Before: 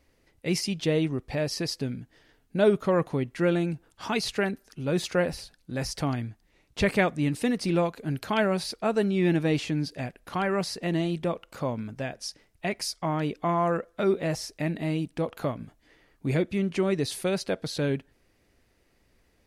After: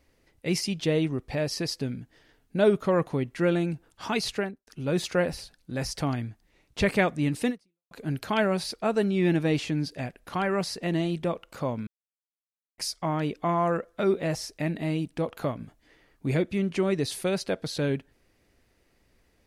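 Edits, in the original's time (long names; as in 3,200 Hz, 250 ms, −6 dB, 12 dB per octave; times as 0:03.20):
0:04.30–0:04.67: fade out and dull
0:07.49–0:07.91: fade out exponential
0:11.87–0:12.78: silence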